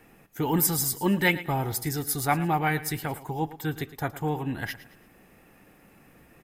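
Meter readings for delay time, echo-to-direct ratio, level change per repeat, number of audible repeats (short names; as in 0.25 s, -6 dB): 0.111 s, -15.0 dB, -8.5 dB, 3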